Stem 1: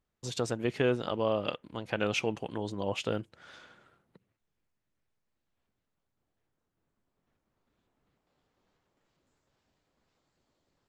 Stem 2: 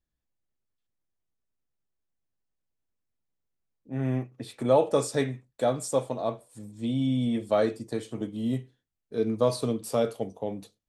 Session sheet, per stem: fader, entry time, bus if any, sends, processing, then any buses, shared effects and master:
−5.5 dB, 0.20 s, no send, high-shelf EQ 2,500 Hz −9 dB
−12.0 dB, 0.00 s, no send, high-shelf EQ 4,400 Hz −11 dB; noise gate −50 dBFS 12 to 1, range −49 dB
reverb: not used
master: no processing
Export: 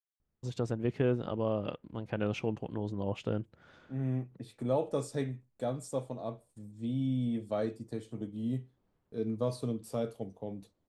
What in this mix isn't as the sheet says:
stem 2: missing high-shelf EQ 4,400 Hz −11 dB
master: extra low-shelf EQ 310 Hz +10 dB

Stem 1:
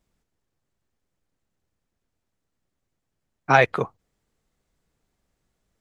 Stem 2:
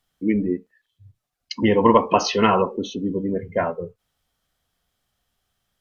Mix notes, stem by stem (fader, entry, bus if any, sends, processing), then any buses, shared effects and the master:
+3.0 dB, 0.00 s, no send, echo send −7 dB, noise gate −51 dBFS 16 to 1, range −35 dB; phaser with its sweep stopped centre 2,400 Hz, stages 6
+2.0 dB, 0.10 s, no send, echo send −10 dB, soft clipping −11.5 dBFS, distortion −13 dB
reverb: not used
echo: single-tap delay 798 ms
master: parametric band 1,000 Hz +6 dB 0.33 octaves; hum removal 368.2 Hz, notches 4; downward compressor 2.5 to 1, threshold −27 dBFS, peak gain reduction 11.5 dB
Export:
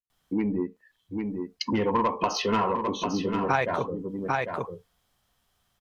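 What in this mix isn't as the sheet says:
stem 1: missing phaser with its sweep stopped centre 2,400 Hz, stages 6
master: missing hum removal 368.2 Hz, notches 4

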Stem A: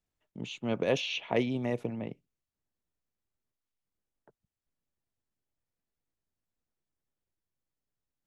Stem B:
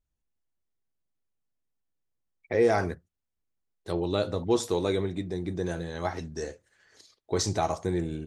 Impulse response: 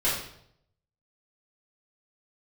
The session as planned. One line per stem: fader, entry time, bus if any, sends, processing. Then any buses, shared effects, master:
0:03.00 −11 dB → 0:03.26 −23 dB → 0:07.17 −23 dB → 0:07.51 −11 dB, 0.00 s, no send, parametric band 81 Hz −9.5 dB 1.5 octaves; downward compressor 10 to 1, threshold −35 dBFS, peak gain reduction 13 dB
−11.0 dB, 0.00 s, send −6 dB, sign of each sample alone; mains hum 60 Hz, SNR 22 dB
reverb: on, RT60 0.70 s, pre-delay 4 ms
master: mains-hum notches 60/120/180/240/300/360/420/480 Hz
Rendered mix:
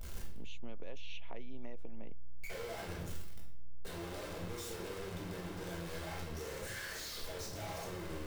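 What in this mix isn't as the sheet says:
stem B −11.0 dB → −19.5 dB
master: missing mains-hum notches 60/120/180/240/300/360/420/480 Hz

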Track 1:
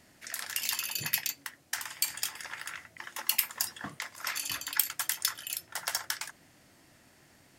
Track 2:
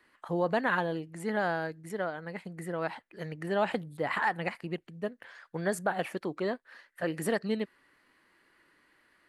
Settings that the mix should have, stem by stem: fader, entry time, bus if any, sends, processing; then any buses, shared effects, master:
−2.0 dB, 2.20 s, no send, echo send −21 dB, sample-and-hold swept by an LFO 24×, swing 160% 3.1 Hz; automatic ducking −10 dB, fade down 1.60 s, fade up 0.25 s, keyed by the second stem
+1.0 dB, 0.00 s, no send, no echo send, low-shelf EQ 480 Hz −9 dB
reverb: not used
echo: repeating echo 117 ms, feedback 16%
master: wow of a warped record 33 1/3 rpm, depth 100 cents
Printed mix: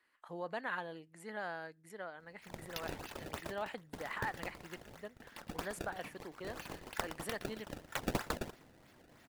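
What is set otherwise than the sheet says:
stem 2 +1.0 dB → −9.0 dB
master: missing wow of a warped record 33 1/3 rpm, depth 100 cents

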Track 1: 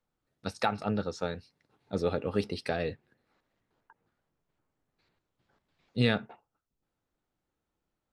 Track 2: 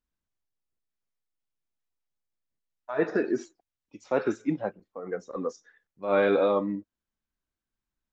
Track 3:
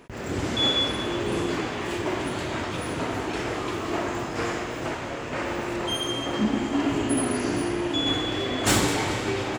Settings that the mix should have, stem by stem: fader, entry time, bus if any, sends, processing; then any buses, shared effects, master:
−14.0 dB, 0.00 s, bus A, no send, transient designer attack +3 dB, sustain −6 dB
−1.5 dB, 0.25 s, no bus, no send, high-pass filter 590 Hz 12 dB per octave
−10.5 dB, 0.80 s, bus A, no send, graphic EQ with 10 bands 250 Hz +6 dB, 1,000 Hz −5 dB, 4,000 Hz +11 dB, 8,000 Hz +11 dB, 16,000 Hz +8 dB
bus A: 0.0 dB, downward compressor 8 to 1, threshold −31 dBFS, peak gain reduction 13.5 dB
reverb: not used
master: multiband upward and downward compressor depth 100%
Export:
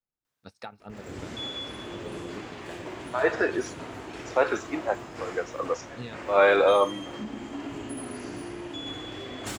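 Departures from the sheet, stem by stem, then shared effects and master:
stem 2 −1.5 dB → +7.5 dB
stem 3: missing graphic EQ with 10 bands 250 Hz +6 dB, 1,000 Hz −5 dB, 4,000 Hz +11 dB, 8,000 Hz +11 dB, 16,000 Hz +8 dB
master: missing multiband upward and downward compressor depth 100%

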